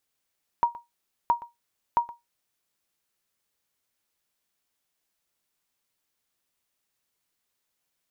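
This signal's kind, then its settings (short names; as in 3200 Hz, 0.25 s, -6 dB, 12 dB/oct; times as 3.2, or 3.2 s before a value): sonar ping 946 Hz, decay 0.18 s, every 0.67 s, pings 3, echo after 0.12 s, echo -18.5 dB -13 dBFS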